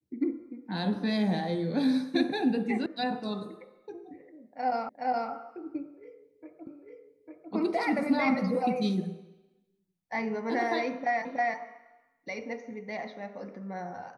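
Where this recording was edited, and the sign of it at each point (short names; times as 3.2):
2.86 sound cut off
4.89 repeat of the last 0.42 s
6.67 repeat of the last 0.85 s
11.25 repeat of the last 0.32 s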